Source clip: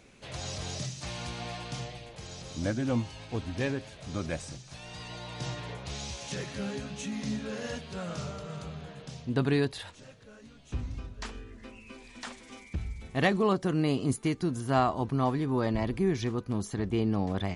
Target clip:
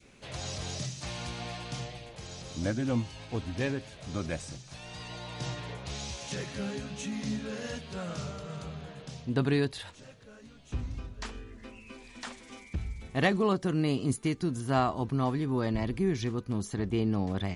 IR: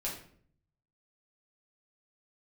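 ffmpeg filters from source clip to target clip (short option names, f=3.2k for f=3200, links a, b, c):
-af "adynamicequalizer=threshold=0.00794:dfrequency=770:dqfactor=0.73:tfrequency=770:tqfactor=0.73:attack=5:release=100:ratio=0.375:range=2:mode=cutabove:tftype=bell"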